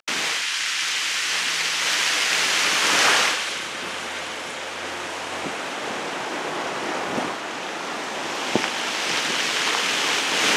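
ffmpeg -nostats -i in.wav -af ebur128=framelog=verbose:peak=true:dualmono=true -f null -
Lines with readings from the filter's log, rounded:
Integrated loudness:
  I:         -19.2 LUFS
  Threshold: -29.2 LUFS
Loudness range:
  LRA:         8.7 LU
  Threshold: -39.6 LUFS
  LRA low:   -25.0 LUFS
  LRA high:  -16.3 LUFS
True peak:
  Peak:       -4.1 dBFS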